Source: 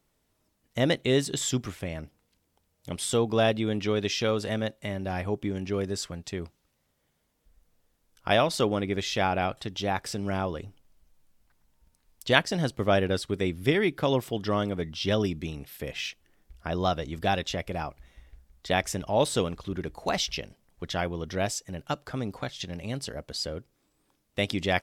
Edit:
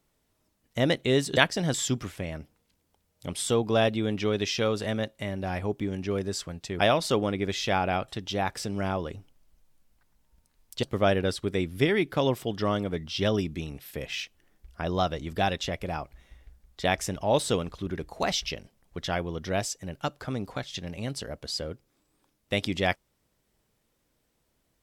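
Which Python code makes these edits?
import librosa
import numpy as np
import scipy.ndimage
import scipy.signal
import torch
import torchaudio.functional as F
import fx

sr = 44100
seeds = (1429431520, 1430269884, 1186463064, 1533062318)

y = fx.edit(x, sr, fx.cut(start_s=6.42, length_s=1.86),
    fx.move(start_s=12.32, length_s=0.37, to_s=1.37), tone=tone)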